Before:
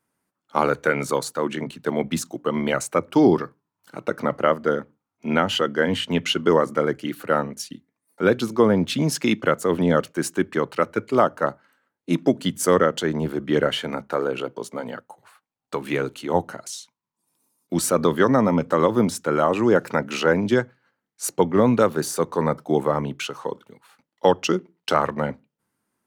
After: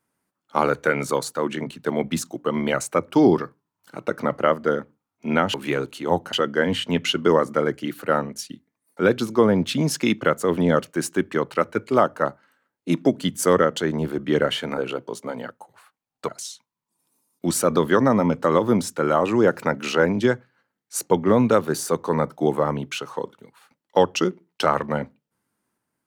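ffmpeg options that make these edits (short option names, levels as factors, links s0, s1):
-filter_complex "[0:a]asplit=5[s0][s1][s2][s3][s4];[s0]atrim=end=5.542[s5];[s1]atrim=start=15.768:end=16.562[s6];[s2]atrim=start=5.538:end=13.992[s7];[s3]atrim=start=14.268:end=15.772[s8];[s4]atrim=start=16.558[s9];[s5][s6]acrossfade=d=0.004:c1=hsin:c2=hsin[s10];[s10][s7]acrossfade=d=0.004:c1=hsin:c2=hsin[s11];[s11][s8]acrossfade=d=0.004:c1=hsin:c2=hsin[s12];[s12][s9]acrossfade=d=0.004:c1=hsin:c2=hsin"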